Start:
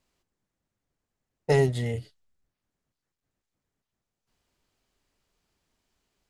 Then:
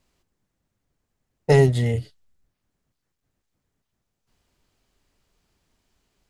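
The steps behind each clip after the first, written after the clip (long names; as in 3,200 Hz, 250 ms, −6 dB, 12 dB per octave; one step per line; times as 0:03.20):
low-shelf EQ 210 Hz +4.5 dB
level +4.5 dB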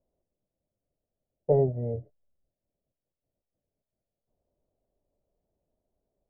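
transistor ladder low-pass 670 Hz, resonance 65%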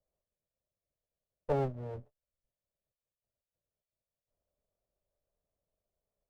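lower of the sound and its delayed copy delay 1.7 ms
level −7 dB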